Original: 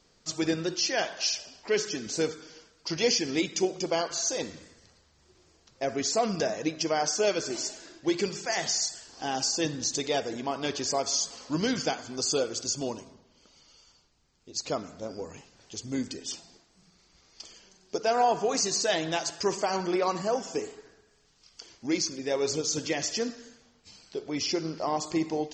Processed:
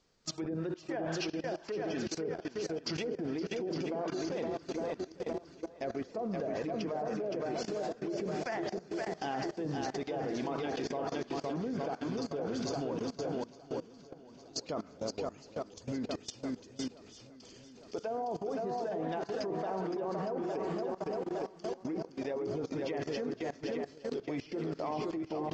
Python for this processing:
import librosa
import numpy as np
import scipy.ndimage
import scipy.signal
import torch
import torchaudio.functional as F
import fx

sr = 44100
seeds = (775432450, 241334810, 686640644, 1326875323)

p1 = fx.env_lowpass_down(x, sr, base_hz=580.0, full_db=-22.5)
p2 = fx.high_shelf(p1, sr, hz=4700.0, db=-4.5)
p3 = p2 + fx.echo_swing(p2, sr, ms=861, ratio=1.5, feedback_pct=51, wet_db=-6.0, dry=0)
p4 = fx.level_steps(p3, sr, step_db=19)
y = p4 * librosa.db_to_amplitude(3.0)